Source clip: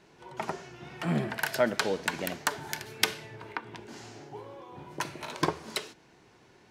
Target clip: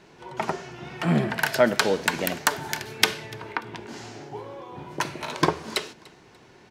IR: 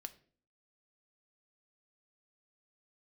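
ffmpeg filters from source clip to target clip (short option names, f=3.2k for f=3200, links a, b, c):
-filter_complex "[0:a]asettb=1/sr,asplit=3[a][b][c];[a]atrim=end=1.644[d];[b]atrim=start=1.64:end=2.67,asetpts=PTS-STARTPTS,afade=t=in:d=0.004:c=qsin,afade=t=out:st=1.026:d=0.004:c=qsin,highshelf=f=9k:g=7[e];[c]atrim=start=2.666[f];[d][e]acrossfade=d=0.004:c1=hsin:c2=qsin[g];[g][f]acrossfade=d=0.004:c1=qsin:c2=hsin,aecho=1:1:293|586:0.0631|0.0196,asplit=2[h][i];[1:a]atrim=start_sample=2205,lowpass=8.1k[j];[i][j]afir=irnorm=-1:irlink=0,volume=-4.5dB[k];[h][k]amix=inputs=2:normalize=0,volume=4dB"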